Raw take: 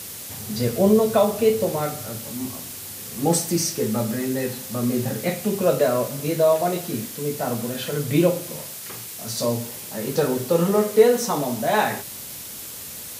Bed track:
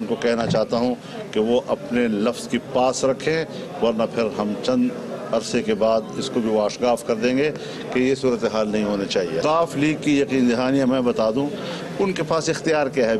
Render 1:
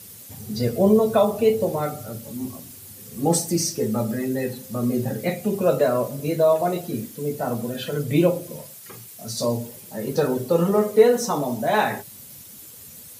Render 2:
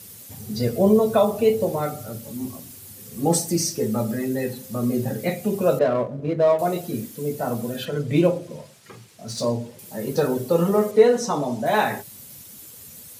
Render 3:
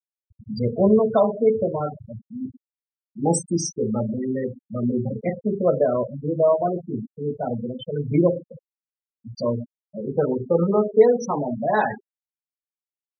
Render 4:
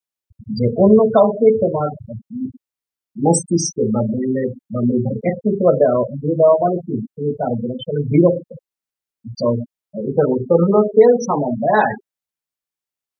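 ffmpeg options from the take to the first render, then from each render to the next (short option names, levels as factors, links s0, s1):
-af "afftdn=nr=11:nf=-36"
-filter_complex "[0:a]asettb=1/sr,asplit=3[s0][s1][s2];[s0]atrim=end=5.794[s3];[s1]atrim=start=5.79:end=6.59,asetpts=PTS-STARTPTS,afade=t=in:d=0.004:c=qsin,afade=t=out:st=0.796:d=0.004:c=qsin,adynamicsmooth=sensitivity=1.5:basefreq=1200[s4];[s2]atrim=start=6.586[s5];[s3][s4]acrossfade=d=0.004:c1=hsin:c2=qsin[s6];[s6][s5]acrossfade=d=0.004:c1=qsin:c2=hsin,asettb=1/sr,asplit=3[s7][s8][s9];[s7]atrim=end=7.854[s10];[s8]atrim=start=7.85:end=9.79,asetpts=PTS-STARTPTS,afade=t=in:d=0.004:c=qsin,afade=t=out:st=1.936:d=0.004:c=qsin,adynamicsmooth=sensitivity=6.5:basefreq=5200[s11];[s9]atrim=start=9.786[s12];[s10][s11]acrossfade=d=0.004:c1=hsin:c2=qsin[s13];[s13][s12]acrossfade=d=0.004:c1=qsin:c2=hsin,asettb=1/sr,asplit=3[s14][s15][s16];[s14]atrim=end=10.914[s17];[s15]atrim=start=10.91:end=11.66,asetpts=PTS-STARTPTS,afade=t=in:d=0.004:c=qsin,afade=t=out:st=0.746:d=0.004:c=qsin,lowpass=7500[s18];[s16]atrim=start=11.656[s19];[s17][s18]acrossfade=d=0.004:c1=hsin:c2=qsin[s20];[s20][s19]acrossfade=d=0.004:c1=qsin:c2=hsin"
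-af "afftfilt=real='re*gte(hypot(re,im),0.126)':imag='im*gte(hypot(re,im),0.126)':win_size=1024:overlap=0.75"
-af "volume=2,alimiter=limit=0.891:level=0:latency=1"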